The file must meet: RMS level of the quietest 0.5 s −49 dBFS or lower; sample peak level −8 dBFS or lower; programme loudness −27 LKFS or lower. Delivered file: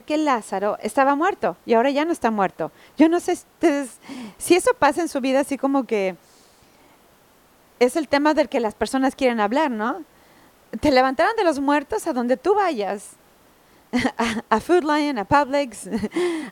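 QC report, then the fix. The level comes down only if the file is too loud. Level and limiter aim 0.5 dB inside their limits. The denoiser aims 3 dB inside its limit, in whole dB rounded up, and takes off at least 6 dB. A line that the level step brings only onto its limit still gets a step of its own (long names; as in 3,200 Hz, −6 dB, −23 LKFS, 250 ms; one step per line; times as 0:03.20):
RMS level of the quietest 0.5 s −55 dBFS: in spec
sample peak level −2.0 dBFS: out of spec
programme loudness −21.0 LKFS: out of spec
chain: level −6.5 dB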